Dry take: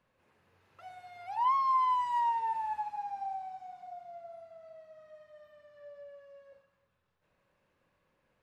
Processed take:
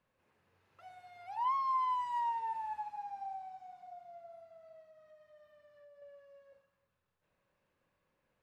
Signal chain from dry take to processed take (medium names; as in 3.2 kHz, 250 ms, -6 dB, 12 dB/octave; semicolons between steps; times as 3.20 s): 4.81–6.02 s: compression, threshold -52 dBFS, peak gain reduction 6 dB; trim -5 dB